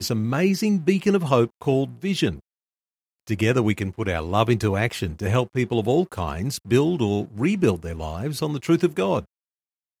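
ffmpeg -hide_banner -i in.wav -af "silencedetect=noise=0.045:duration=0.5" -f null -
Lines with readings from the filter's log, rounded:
silence_start: 2.33
silence_end: 3.29 | silence_duration: 0.96
silence_start: 9.20
silence_end: 10.00 | silence_duration: 0.80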